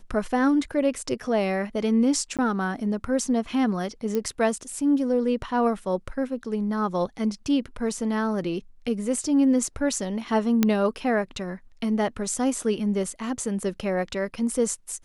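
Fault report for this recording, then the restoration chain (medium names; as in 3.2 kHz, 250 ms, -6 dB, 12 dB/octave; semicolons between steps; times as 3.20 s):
2.37–2.39 s: dropout 17 ms
4.15 s: pop -14 dBFS
10.63 s: pop -6 dBFS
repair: de-click; interpolate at 2.37 s, 17 ms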